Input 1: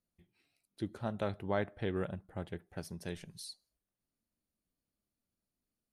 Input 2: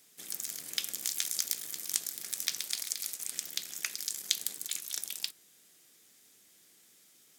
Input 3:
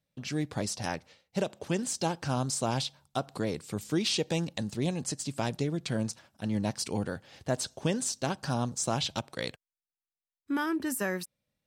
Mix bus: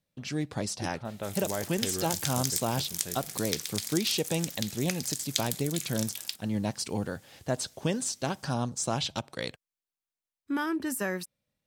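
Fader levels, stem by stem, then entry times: -1.0, 0.0, 0.0 dB; 0.00, 1.05, 0.00 s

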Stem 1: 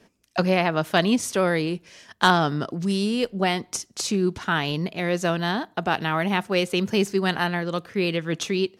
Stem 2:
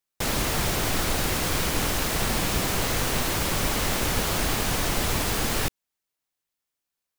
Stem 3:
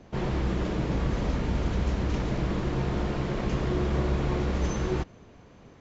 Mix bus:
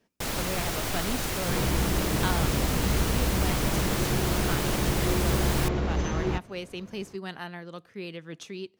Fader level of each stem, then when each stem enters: -14.0, -5.0, 0.0 dB; 0.00, 0.00, 1.35 s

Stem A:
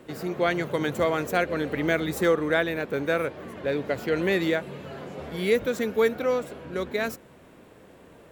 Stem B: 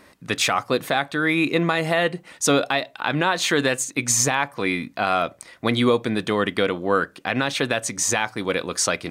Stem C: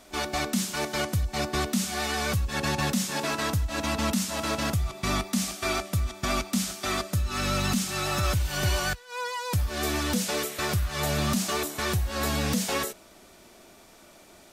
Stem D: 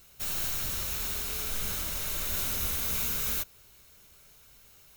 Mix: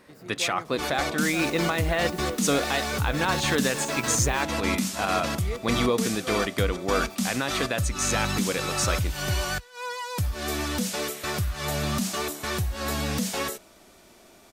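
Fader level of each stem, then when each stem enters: -13.5, -5.5, -1.0, -17.5 dB; 0.00, 0.00, 0.65, 1.00 s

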